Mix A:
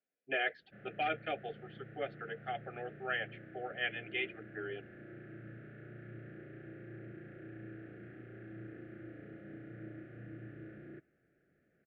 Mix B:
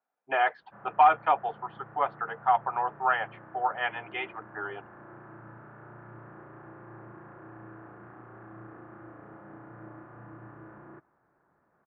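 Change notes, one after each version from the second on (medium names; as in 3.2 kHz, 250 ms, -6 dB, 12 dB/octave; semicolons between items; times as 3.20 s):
background: add treble shelf 2.2 kHz -11.5 dB; master: remove Butterworth band-stop 990 Hz, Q 0.7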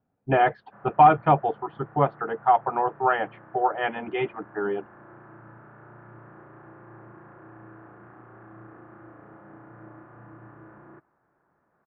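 speech: remove high-pass 910 Hz 12 dB/octave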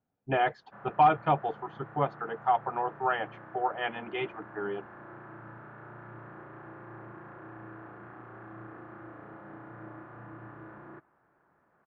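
speech -8.0 dB; master: remove distance through air 380 m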